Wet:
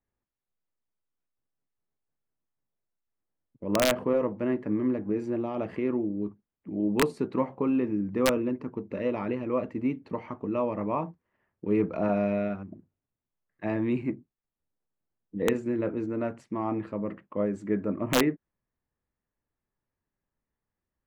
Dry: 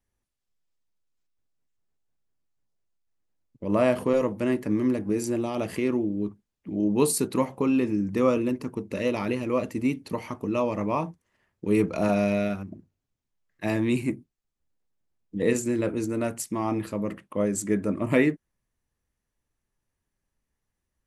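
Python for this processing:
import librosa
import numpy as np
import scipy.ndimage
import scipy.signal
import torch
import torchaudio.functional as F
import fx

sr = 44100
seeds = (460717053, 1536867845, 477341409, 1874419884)

y = scipy.signal.sosfilt(scipy.signal.butter(2, 1800.0, 'lowpass', fs=sr, output='sos'), x)
y = fx.low_shelf(y, sr, hz=88.0, db=-7.5)
y = (np.mod(10.0 ** (11.5 / 20.0) * y + 1.0, 2.0) - 1.0) / 10.0 ** (11.5 / 20.0)
y = y * librosa.db_to_amplitude(-2.0)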